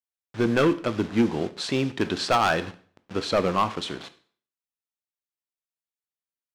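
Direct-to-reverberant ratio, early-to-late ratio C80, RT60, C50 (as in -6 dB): 11.0 dB, 19.5 dB, 0.50 s, 15.5 dB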